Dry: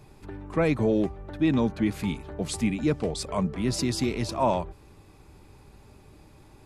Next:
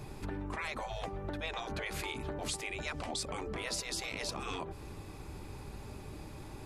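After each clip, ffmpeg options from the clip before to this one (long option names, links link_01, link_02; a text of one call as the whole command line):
ffmpeg -i in.wav -af "afftfilt=real='re*lt(hypot(re,im),0.1)':imag='im*lt(hypot(re,im),0.1)':win_size=1024:overlap=0.75,acompressor=threshold=-41dB:ratio=6,volume=6dB" out.wav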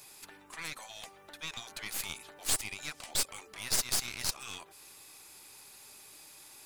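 ffmpeg -i in.wav -af "aderivative,aeval=exprs='clip(val(0),-1,0.00355)':channel_layout=same,aeval=exprs='0.0501*(cos(1*acos(clip(val(0)/0.0501,-1,1)))-cos(1*PI/2))+0.0158*(cos(4*acos(clip(val(0)/0.0501,-1,1)))-cos(4*PI/2))':channel_layout=same,volume=8.5dB" out.wav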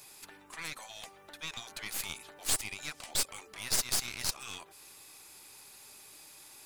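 ffmpeg -i in.wav -af anull out.wav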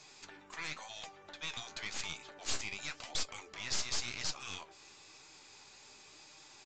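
ffmpeg -i in.wav -af "flanger=delay=6.3:depth=9.4:regen=61:speed=0.94:shape=sinusoidal,aresample=16000,asoftclip=type=hard:threshold=-32dB,aresample=44100,volume=4dB" out.wav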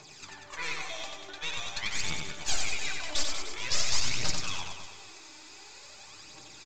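ffmpeg -i in.wav -filter_complex "[0:a]aphaser=in_gain=1:out_gain=1:delay=3.5:decay=0.61:speed=0.47:type=triangular,asplit=2[link_01][link_02];[link_02]aecho=0:1:90|189|297.9|417.7|549.5:0.631|0.398|0.251|0.158|0.1[link_03];[link_01][link_03]amix=inputs=2:normalize=0,volume=3.5dB" out.wav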